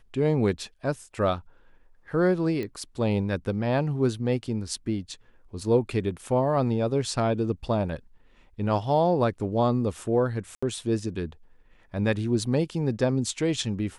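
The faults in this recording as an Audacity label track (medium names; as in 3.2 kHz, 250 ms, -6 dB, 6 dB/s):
2.630000	2.630000	pop -21 dBFS
10.550000	10.620000	dropout 75 ms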